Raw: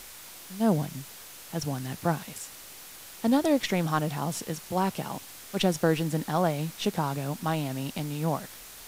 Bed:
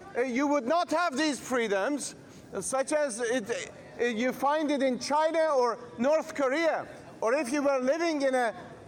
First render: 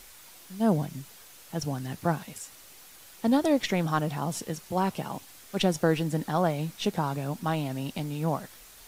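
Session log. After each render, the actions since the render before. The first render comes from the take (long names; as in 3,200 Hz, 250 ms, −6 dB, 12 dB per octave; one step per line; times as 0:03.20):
broadband denoise 6 dB, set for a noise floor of −46 dBFS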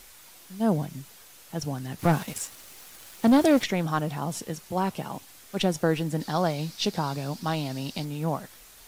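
0:01.99–0:03.64: leveller curve on the samples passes 2
0:06.20–0:08.05: parametric band 4,700 Hz +11.5 dB 0.7 octaves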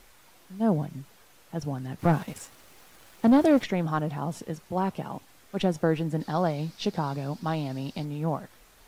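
high-shelf EQ 2,800 Hz −11 dB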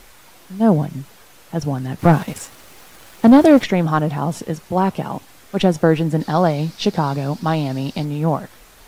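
level +10 dB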